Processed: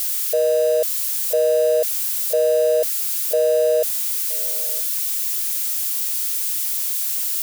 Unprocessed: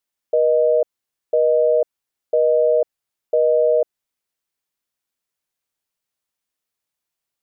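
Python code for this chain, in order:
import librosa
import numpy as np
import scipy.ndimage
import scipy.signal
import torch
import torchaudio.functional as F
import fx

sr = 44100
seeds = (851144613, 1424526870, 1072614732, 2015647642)

y = x + 0.5 * 10.0 ** (-19.0 / 20.0) * np.diff(np.sign(x), prepend=np.sign(x[:1]))
y = fx.peak_eq(y, sr, hz=280.0, db=-8.0, octaves=0.96)
y = y + 10.0 ** (-22.5 / 20.0) * np.pad(y, (int(971 * sr / 1000.0), 0))[:len(y)]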